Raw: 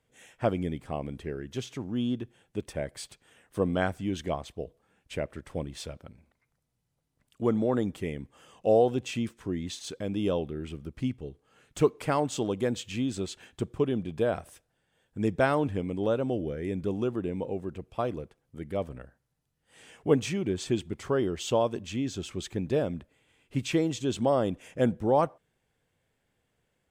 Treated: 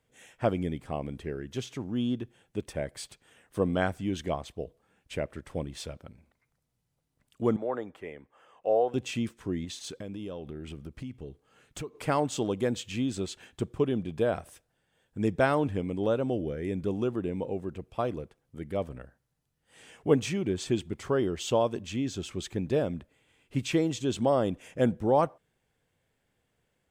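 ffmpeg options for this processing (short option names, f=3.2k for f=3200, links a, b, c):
-filter_complex "[0:a]asettb=1/sr,asplit=3[a][b][c];[a]atrim=end=7.564[d];[b]atrim=start=7.56:end=8.94,asetpts=PTS-STARTPTS,afade=t=in:d=0.004:c=qsin,afade=t=out:st=1.376:d=0.004:c=qsin,acrossover=split=440 2300:gain=0.141 1 0.158[e][f][g];[e][f][g]amix=inputs=3:normalize=0[h];[c]atrim=start=8.936[i];[d][h]acrossfade=d=0.004:c1=hsin:c2=qsin[j];[j][i]acrossfade=d=0.004:c1=qsin:c2=hsin,asettb=1/sr,asplit=3[k][l][m];[k]atrim=end=9.644[n];[l]atrim=start=9.64:end=12.02,asetpts=PTS-STARTPTS,afade=t=in:d=0.004:c=qsin,afade=t=out:st=2.376:d=0.004:c=qsin,acompressor=threshold=-35dB:ratio=6:attack=3.2:release=140:knee=1:detection=peak[o];[m]atrim=start=12.016[p];[n][o]acrossfade=d=0.004:c1=hsin:c2=qsin[q];[q][p]acrossfade=d=0.004:c1=qsin:c2=hsin"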